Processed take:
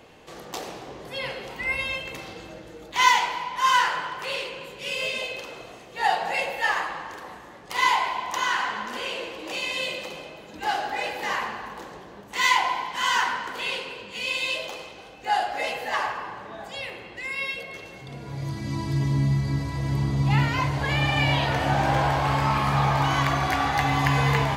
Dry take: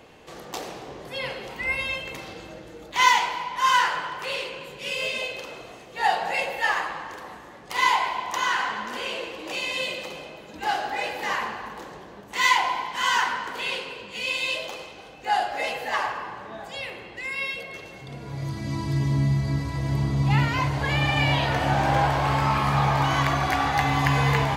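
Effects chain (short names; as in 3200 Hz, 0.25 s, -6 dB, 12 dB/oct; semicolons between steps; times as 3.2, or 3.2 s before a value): de-hum 73.38 Hz, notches 37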